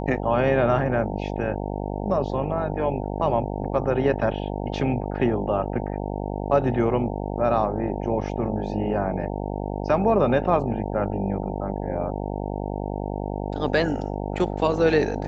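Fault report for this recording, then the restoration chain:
buzz 50 Hz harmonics 18 -29 dBFS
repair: de-hum 50 Hz, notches 18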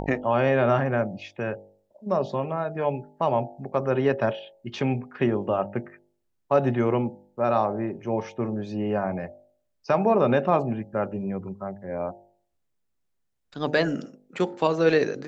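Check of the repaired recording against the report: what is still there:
nothing left

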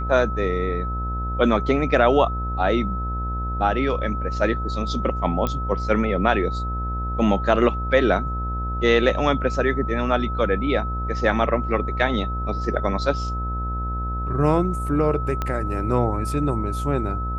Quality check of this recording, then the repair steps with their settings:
buzz 60 Hz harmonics 20 -27 dBFS
whine 1.3 kHz -29 dBFS
5.47 s: pop -11 dBFS
15.42 s: pop -12 dBFS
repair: de-click; band-stop 1.3 kHz, Q 30; de-hum 60 Hz, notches 20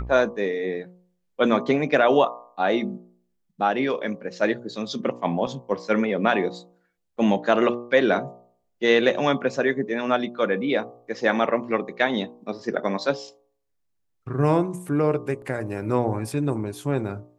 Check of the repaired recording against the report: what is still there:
15.42 s: pop

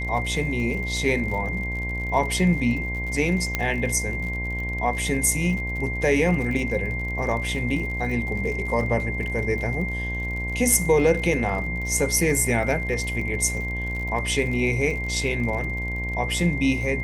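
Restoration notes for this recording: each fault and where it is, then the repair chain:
buzz 60 Hz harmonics 18 -30 dBFS
crackle 58 per s -32 dBFS
whine 2.1 kHz -29 dBFS
3.55 s: pop -8 dBFS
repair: de-click; de-hum 60 Hz, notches 18; band-stop 2.1 kHz, Q 30

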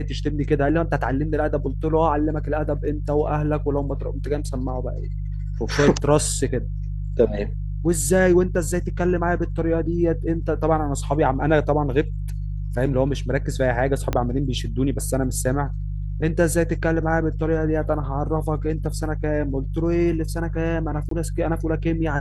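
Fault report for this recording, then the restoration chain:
hum 50 Hz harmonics 3 -27 dBFS
14.13 s: pop -9 dBFS
21.09–21.11 s: dropout 23 ms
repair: de-click; de-hum 50 Hz, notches 3; interpolate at 21.09 s, 23 ms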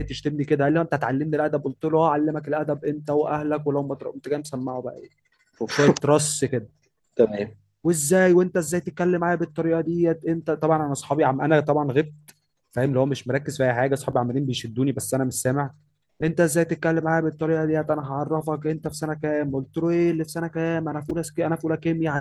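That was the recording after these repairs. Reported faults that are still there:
14.13 s: pop

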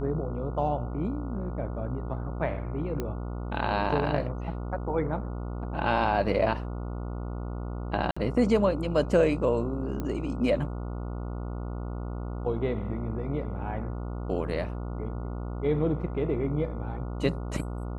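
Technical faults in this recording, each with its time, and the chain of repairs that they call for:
buzz 60 Hz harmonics 24 -34 dBFS
3.00 s: pop -18 dBFS
8.11–8.16 s: dropout 55 ms
10.00 s: pop -20 dBFS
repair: de-click; de-hum 60 Hz, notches 24; interpolate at 8.11 s, 55 ms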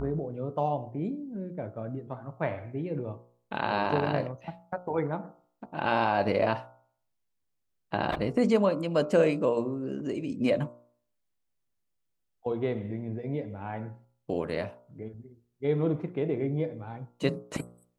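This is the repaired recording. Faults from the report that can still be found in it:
nothing left

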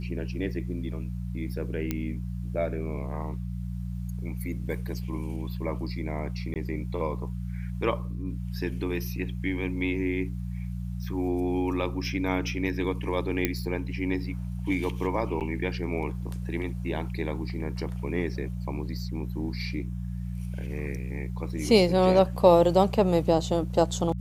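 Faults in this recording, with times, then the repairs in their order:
hum 60 Hz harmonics 3 -33 dBFS
1.91 s: pop -14 dBFS
6.54–6.56 s: dropout 18 ms
13.45 s: pop -9 dBFS
15.40–15.41 s: dropout 8.3 ms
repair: de-click; de-hum 60 Hz, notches 3; interpolate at 6.54 s, 18 ms; interpolate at 15.40 s, 8.3 ms

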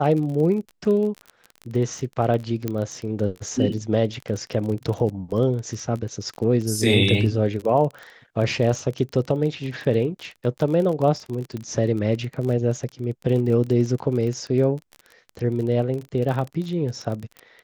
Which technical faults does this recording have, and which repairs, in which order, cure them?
crackle 27 per s -28 dBFS
2.68 s: pop -12 dBFS
11.57 s: pop -20 dBFS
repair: de-click

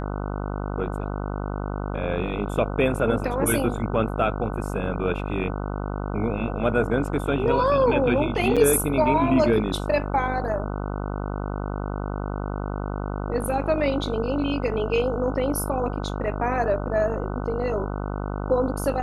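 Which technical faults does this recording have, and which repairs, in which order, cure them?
buzz 50 Hz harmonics 30 -29 dBFS
8.56–8.57 s: dropout 6.1 ms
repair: de-hum 50 Hz, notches 30; interpolate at 8.56 s, 6.1 ms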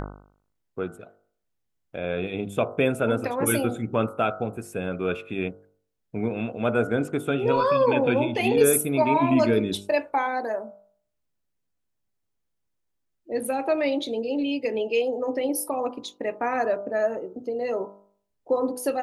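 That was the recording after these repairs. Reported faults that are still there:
nothing left

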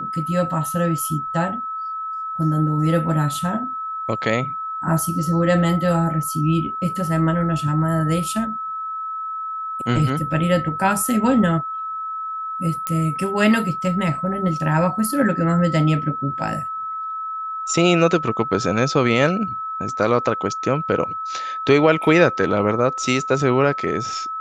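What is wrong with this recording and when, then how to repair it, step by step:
whine 1.3 kHz -25 dBFS
12.87 s: pop -8 dBFS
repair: de-click; band-stop 1.3 kHz, Q 30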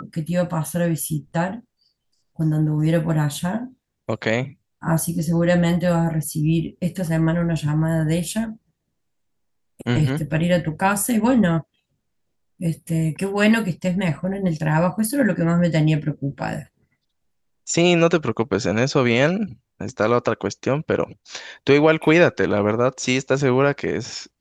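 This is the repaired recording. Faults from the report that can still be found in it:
nothing left

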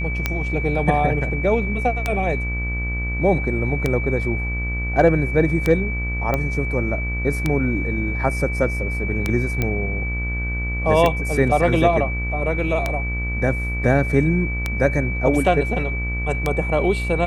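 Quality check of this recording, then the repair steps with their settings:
buzz 60 Hz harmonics 31 -25 dBFS
tick 33 1/3 rpm -6 dBFS
whine 2.3 kHz -27 dBFS
6.34 s: pop -9 dBFS
9.62 s: pop -8 dBFS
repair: de-click; band-stop 2.3 kHz, Q 30; de-hum 60 Hz, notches 31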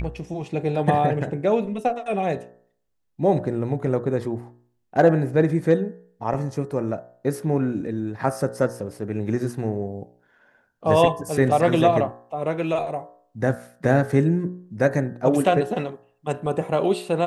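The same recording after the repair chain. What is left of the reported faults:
nothing left

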